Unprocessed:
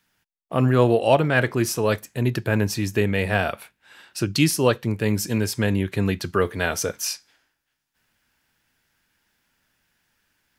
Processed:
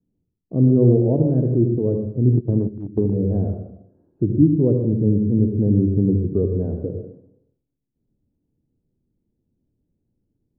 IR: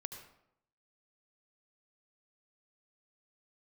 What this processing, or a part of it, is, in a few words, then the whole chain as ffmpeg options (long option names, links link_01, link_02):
next room: -filter_complex "[0:a]lowpass=frequency=400:width=0.5412,lowpass=frequency=400:width=1.3066,equalizer=frequency=290:width_type=o:width=0.32:gain=2[link_01];[1:a]atrim=start_sample=2205[link_02];[link_01][link_02]afir=irnorm=-1:irlink=0,asplit=3[link_03][link_04][link_05];[link_03]afade=type=out:start_time=2.31:duration=0.02[link_06];[link_04]agate=range=-13dB:threshold=-24dB:ratio=16:detection=peak,afade=type=in:start_time=2.31:duration=0.02,afade=type=out:start_time=3.14:duration=0.02[link_07];[link_05]afade=type=in:start_time=3.14:duration=0.02[link_08];[link_06][link_07][link_08]amix=inputs=3:normalize=0,volume=8dB"